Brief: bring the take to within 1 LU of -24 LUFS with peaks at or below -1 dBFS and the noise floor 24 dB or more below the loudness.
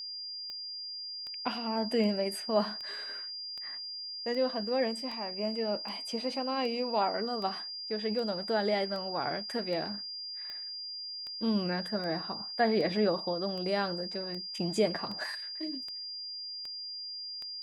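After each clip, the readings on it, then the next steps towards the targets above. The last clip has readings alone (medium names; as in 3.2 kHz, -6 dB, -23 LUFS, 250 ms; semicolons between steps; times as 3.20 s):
clicks found 23; steady tone 4.8 kHz; tone level -38 dBFS; loudness -33.0 LUFS; peak level -14.5 dBFS; loudness target -24.0 LUFS
-> de-click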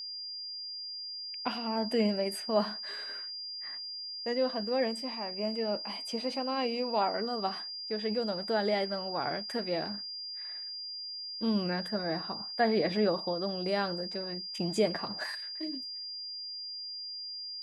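clicks found 0; steady tone 4.8 kHz; tone level -38 dBFS
-> band-stop 4.8 kHz, Q 30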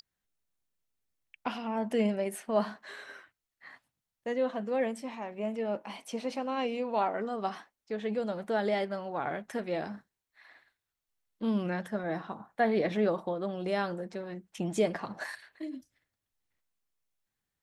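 steady tone not found; loudness -33.5 LUFS; peak level -15.0 dBFS; loudness target -24.0 LUFS
-> trim +9.5 dB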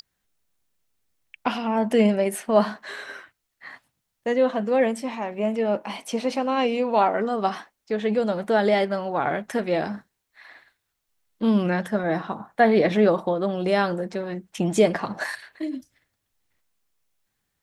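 loudness -24.0 LUFS; peak level -5.5 dBFS; noise floor -79 dBFS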